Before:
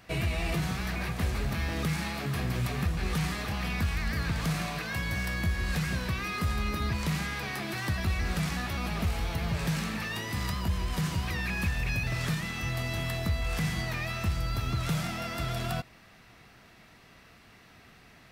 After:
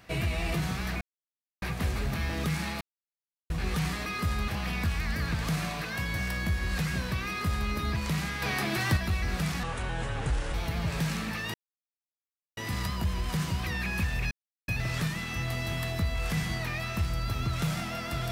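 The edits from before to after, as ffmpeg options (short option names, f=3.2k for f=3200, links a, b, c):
-filter_complex "[0:a]asplit=12[a][b][c][d][e][f][g][h][i][j][k][l];[a]atrim=end=1.01,asetpts=PTS-STARTPTS,afade=t=out:st=1.006:d=0.004:c=hsin,apad=pad_dur=0.61[m];[b]atrim=start=1.01:end=2.2,asetpts=PTS-STARTPTS,afade=t=in:d=0.004:c=hsin,afade=t=out:st=1.186:d=0.004:c=hsin[n];[c]atrim=start=2.2:end=2.89,asetpts=PTS-STARTPTS,volume=0[o];[d]atrim=start=2.89:end=3.452,asetpts=PTS-STARTPTS,afade=t=in:d=0.004:c=hsin[p];[e]atrim=start=6.248:end=6.672[q];[f]atrim=start=3.448:end=7.392[r];[g]atrim=start=7.388:end=7.942,asetpts=PTS-STARTPTS,volume=5dB[s];[h]atrim=start=7.938:end=8.604[t];[i]atrim=start=8.6:end=9.21,asetpts=PTS-STARTPTS,asetrate=29547,aresample=44100[u];[j]atrim=start=9.206:end=10.21,asetpts=PTS-STARTPTS,afade=t=out:st=1:d=0.004:c=hsin,apad=pad_dur=1.03[v];[k]atrim=start=10.21:end=11.95,asetpts=PTS-STARTPTS,afade=t=in:d=0.004:c=hsin,afade=t=out:st=1.736:d=0.004:c=hsin,apad=pad_dur=0.37[w];[l]atrim=start=11.95,asetpts=PTS-STARTPTS,afade=t=in:d=0.004:c=hsin[x];[m][n][o][p]concat=n=4:v=0:a=1[y];[y][q]acrossfade=d=0.004:c1=hsin:c2=hsin[z];[z][r]acrossfade=d=0.004:c1=hsin:c2=hsin[aa];[aa][s]acrossfade=d=0.004:c1=hsin:c2=hsin[ab];[ab][t]acrossfade=d=0.004:c1=hsin:c2=hsin[ac];[ac][u]acrossfade=d=0.004:c1=hsin:c2=hsin[ad];[v][w][x]concat=n=3:v=0:a=1[ae];[ad][ae]acrossfade=d=0.004:c1=hsin:c2=hsin"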